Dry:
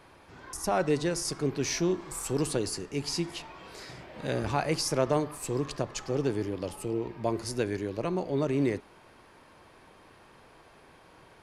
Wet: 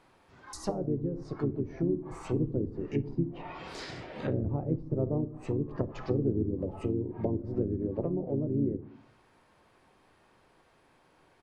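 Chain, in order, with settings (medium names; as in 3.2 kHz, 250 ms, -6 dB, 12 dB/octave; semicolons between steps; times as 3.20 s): gain riding within 5 dB 2 s; low-pass that closes with the level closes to 340 Hz, closed at -26 dBFS; on a send at -13 dB: reverberation RT60 0.70 s, pre-delay 5 ms; on the sum: harmony voices -4 st -5 dB; spectral noise reduction 7 dB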